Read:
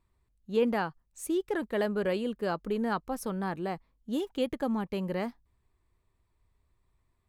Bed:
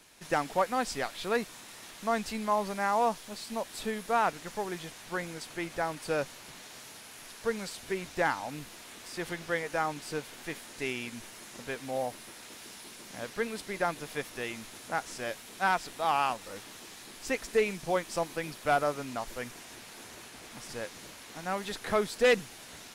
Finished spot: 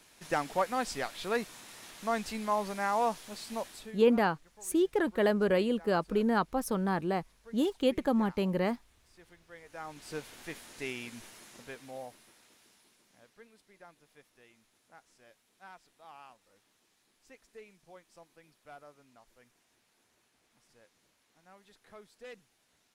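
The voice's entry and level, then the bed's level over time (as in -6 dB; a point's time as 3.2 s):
3.45 s, +2.5 dB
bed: 3.66 s -2 dB
4.08 s -22 dB
9.47 s -22 dB
10.15 s -4 dB
11.26 s -4 dB
13.51 s -24.5 dB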